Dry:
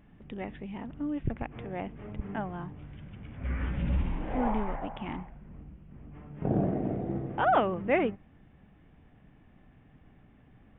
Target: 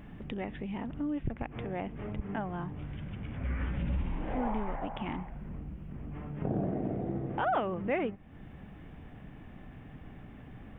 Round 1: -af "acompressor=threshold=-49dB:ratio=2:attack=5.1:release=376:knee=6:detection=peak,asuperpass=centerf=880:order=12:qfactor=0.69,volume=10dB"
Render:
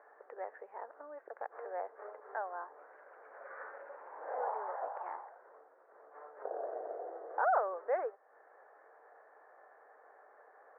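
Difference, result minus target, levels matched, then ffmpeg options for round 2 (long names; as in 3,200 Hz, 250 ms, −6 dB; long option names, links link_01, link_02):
1,000 Hz band +4.0 dB
-af "acompressor=threshold=-49dB:ratio=2:attack=5.1:release=376:knee=6:detection=peak,volume=10dB"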